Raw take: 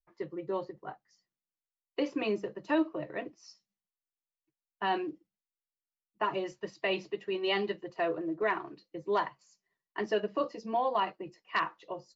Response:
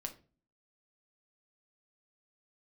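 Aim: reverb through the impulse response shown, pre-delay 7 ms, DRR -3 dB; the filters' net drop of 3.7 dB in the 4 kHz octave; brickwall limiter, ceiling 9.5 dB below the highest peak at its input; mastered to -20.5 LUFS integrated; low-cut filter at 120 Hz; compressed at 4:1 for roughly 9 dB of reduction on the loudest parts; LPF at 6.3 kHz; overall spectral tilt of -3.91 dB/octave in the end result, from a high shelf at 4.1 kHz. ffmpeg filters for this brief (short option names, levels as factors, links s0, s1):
-filter_complex "[0:a]highpass=120,lowpass=6300,equalizer=f=4000:t=o:g=-8,highshelf=f=4100:g=3.5,acompressor=threshold=0.0178:ratio=4,alimiter=level_in=2.66:limit=0.0631:level=0:latency=1,volume=0.376,asplit=2[s0][s1];[1:a]atrim=start_sample=2205,adelay=7[s2];[s1][s2]afir=irnorm=-1:irlink=0,volume=1.78[s3];[s0][s3]amix=inputs=2:normalize=0,volume=7.94"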